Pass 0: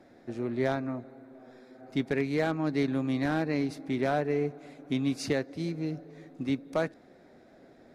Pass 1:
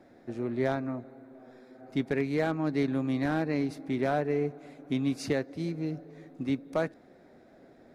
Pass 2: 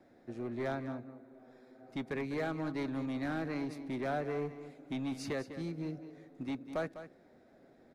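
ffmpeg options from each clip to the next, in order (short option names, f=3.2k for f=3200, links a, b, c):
-af "equalizer=f=4.9k:w=0.52:g=-3"
-filter_complex "[0:a]acrossover=split=660|750[a][b][c];[a]asoftclip=type=hard:threshold=-27.5dB[d];[d][b][c]amix=inputs=3:normalize=0,aecho=1:1:201:0.251,volume=-6dB"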